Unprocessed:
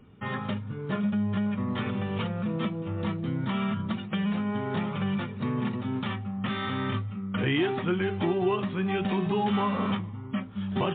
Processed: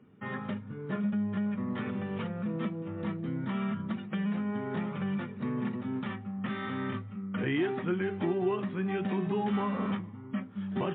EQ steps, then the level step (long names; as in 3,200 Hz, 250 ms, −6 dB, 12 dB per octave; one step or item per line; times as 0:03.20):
high-pass filter 170 Hz 12 dB per octave
tilt shelving filter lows +6.5 dB, about 770 Hz
parametric band 1,800 Hz +8 dB 1.1 octaves
−7.0 dB